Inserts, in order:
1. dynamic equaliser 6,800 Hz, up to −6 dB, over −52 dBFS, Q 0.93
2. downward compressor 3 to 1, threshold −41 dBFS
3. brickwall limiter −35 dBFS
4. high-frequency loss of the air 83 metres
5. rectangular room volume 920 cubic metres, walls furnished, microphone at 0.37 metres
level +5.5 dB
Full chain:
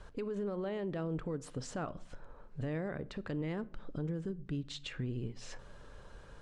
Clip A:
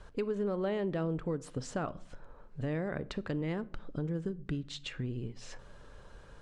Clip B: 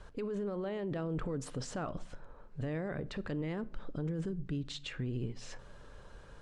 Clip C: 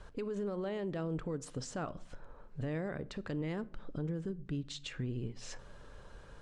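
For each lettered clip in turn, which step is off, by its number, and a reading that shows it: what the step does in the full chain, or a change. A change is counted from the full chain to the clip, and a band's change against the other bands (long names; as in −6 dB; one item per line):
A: 3, change in crest factor +3.0 dB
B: 2, average gain reduction 7.5 dB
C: 1, 8 kHz band +2.5 dB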